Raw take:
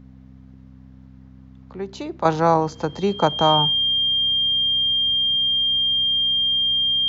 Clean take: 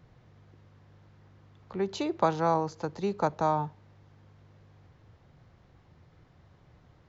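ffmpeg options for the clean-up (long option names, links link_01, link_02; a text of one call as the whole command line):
ffmpeg -i in.wav -af "bandreject=frequency=64.8:width_type=h:width=4,bandreject=frequency=129.6:width_type=h:width=4,bandreject=frequency=194.4:width_type=h:width=4,bandreject=frequency=259.2:width_type=h:width=4,bandreject=frequency=3200:width=30,asetnsamples=nb_out_samples=441:pad=0,asendcmd='2.25 volume volume -9dB',volume=0dB" out.wav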